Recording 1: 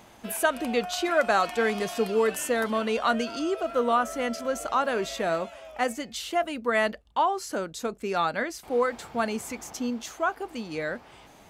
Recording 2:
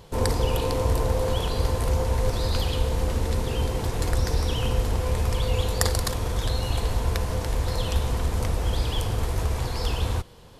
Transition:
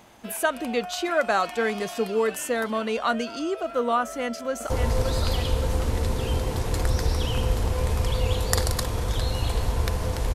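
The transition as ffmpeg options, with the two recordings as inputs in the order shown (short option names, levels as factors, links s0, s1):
-filter_complex "[0:a]apad=whole_dur=10.34,atrim=end=10.34,atrim=end=4.702[s0];[1:a]atrim=start=1.978:end=7.62[s1];[s0][s1]acrossfade=d=0.004:c1=hsin:c2=hsin,asplit=2[s2][s3];[s3]afade=t=in:st=4.03:d=0.01,afade=t=out:st=4.7:d=0.01,aecho=0:1:570|1140|1710|2280|2850|3420|3990:0.562341|0.309288|0.170108|0.0935595|0.0514577|0.0283018|0.015566[s4];[s2][s4]amix=inputs=2:normalize=0"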